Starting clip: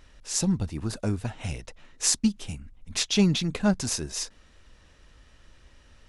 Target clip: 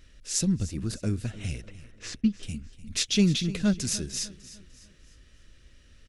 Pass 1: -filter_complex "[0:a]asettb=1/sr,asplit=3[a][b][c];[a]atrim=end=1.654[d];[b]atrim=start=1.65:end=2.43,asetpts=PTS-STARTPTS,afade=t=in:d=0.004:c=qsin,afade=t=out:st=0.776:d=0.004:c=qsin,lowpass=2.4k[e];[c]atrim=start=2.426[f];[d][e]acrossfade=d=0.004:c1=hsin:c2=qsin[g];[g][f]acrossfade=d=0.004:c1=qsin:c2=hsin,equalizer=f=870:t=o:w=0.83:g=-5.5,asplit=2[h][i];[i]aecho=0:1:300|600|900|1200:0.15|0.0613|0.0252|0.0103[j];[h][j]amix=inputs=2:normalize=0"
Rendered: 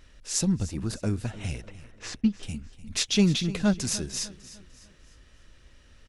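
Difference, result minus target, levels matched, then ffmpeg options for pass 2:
1000 Hz band +6.5 dB
-filter_complex "[0:a]asettb=1/sr,asplit=3[a][b][c];[a]atrim=end=1.654[d];[b]atrim=start=1.65:end=2.43,asetpts=PTS-STARTPTS,afade=t=in:d=0.004:c=qsin,afade=t=out:st=0.776:d=0.004:c=qsin,lowpass=2.4k[e];[c]atrim=start=2.426[f];[d][e]acrossfade=d=0.004:c1=hsin:c2=qsin[g];[g][f]acrossfade=d=0.004:c1=qsin:c2=hsin,equalizer=f=870:t=o:w=0.83:g=-17,asplit=2[h][i];[i]aecho=0:1:300|600|900|1200:0.15|0.0613|0.0252|0.0103[j];[h][j]amix=inputs=2:normalize=0"

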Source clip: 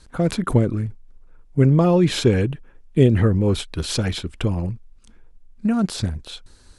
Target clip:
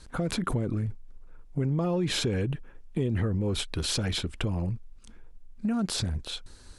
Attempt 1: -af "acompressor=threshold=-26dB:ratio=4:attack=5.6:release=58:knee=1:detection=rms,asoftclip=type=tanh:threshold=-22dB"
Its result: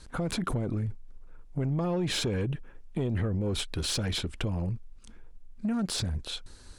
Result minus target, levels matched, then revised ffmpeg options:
soft clip: distortion +18 dB
-af "acompressor=threshold=-26dB:ratio=4:attack=5.6:release=58:knee=1:detection=rms,asoftclip=type=tanh:threshold=-11.5dB"

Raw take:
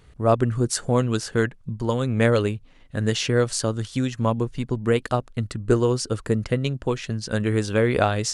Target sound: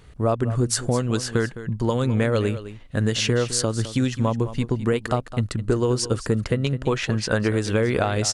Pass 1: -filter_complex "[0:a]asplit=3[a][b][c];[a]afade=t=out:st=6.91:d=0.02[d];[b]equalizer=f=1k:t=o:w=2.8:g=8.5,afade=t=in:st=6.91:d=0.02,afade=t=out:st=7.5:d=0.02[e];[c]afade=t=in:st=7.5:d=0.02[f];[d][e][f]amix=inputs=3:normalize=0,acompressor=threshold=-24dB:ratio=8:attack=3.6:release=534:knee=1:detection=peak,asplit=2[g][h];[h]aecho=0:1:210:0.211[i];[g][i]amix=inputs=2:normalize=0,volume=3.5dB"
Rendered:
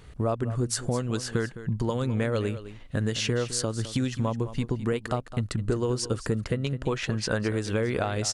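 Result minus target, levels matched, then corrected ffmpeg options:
compressor: peak gain reduction +5.5 dB
-filter_complex "[0:a]asplit=3[a][b][c];[a]afade=t=out:st=6.91:d=0.02[d];[b]equalizer=f=1k:t=o:w=2.8:g=8.5,afade=t=in:st=6.91:d=0.02,afade=t=out:st=7.5:d=0.02[e];[c]afade=t=in:st=7.5:d=0.02[f];[d][e][f]amix=inputs=3:normalize=0,acompressor=threshold=-17.5dB:ratio=8:attack=3.6:release=534:knee=1:detection=peak,asplit=2[g][h];[h]aecho=0:1:210:0.211[i];[g][i]amix=inputs=2:normalize=0,volume=3.5dB"

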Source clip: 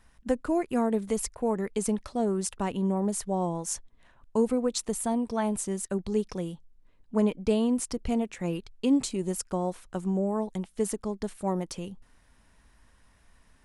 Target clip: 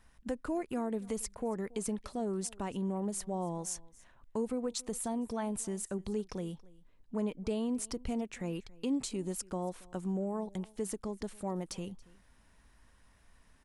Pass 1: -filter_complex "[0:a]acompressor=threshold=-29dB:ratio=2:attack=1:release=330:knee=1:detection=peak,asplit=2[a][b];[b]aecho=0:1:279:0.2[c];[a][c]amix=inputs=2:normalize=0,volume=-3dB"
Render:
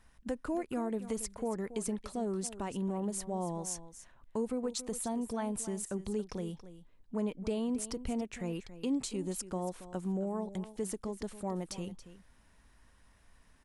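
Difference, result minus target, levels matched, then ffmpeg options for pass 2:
echo-to-direct +9 dB
-filter_complex "[0:a]acompressor=threshold=-29dB:ratio=2:attack=1:release=330:knee=1:detection=peak,asplit=2[a][b];[b]aecho=0:1:279:0.0708[c];[a][c]amix=inputs=2:normalize=0,volume=-3dB"

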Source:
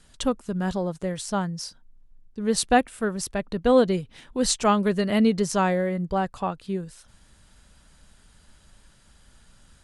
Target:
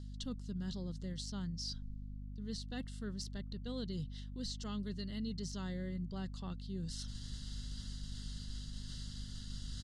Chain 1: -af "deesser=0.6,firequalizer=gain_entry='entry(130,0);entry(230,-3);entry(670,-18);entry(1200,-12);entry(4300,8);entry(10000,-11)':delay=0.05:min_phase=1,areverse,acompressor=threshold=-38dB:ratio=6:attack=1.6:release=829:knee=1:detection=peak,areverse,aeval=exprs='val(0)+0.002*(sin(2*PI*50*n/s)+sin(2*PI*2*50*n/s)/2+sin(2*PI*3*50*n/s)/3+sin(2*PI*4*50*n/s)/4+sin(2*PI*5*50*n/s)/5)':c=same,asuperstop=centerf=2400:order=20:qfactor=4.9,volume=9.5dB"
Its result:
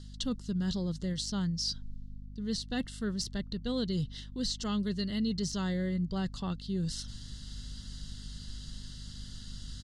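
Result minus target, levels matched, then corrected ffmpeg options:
compressor: peak gain reduction -9.5 dB
-af "deesser=0.6,firequalizer=gain_entry='entry(130,0);entry(230,-3);entry(670,-18);entry(1200,-12);entry(4300,8);entry(10000,-11)':delay=0.05:min_phase=1,areverse,acompressor=threshold=-49.5dB:ratio=6:attack=1.6:release=829:knee=1:detection=peak,areverse,aeval=exprs='val(0)+0.002*(sin(2*PI*50*n/s)+sin(2*PI*2*50*n/s)/2+sin(2*PI*3*50*n/s)/3+sin(2*PI*4*50*n/s)/4+sin(2*PI*5*50*n/s)/5)':c=same,asuperstop=centerf=2400:order=20:qfactor=4.9,volume=9.5dB"

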